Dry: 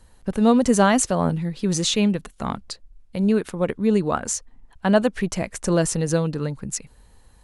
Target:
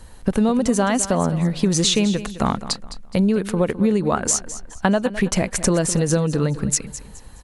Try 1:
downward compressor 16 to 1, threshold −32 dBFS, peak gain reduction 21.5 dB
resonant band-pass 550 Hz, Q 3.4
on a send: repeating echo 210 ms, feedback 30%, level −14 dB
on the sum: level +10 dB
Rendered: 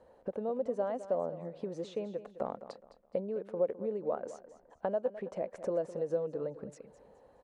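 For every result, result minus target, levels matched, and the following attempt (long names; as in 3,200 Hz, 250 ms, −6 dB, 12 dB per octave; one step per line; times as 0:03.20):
downward compressor: peak gain reduction +7 dB; 500 Hz band +6.0 dB
downward compressor 16 to 1, threshold −24.5 dBFS, peak gain reduction 14.5 dB
resonant band-pass 550 Hz, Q 3.4
on a send: repeating echo 210 ms, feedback 30%, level −14 dB
on the sum: level +10 dB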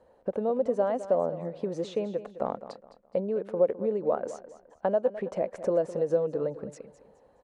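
500 Hz band +6.0 dB
downward compressor 16 to 1, threshold −24.5 dBFS, peak gain reduction 14.5 dB
on a send: repeating echo 210 ms, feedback 30%, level −14 dB
on the sum: level +10 dB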